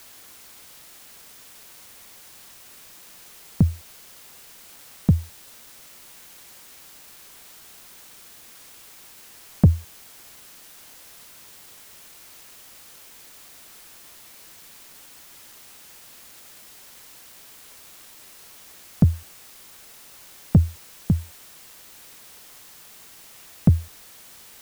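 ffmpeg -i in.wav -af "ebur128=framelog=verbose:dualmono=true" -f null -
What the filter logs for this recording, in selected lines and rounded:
Integrated loudness:
  I:         -20.1 LUFS
  Threshold: -38.3 LUFS
Loudness range:
  LRA:        16.8 LU
  Threshold: -48.3 LUFS
  LRA low:   -40.9 LUFS
  LRA high:  -24.1 LUFS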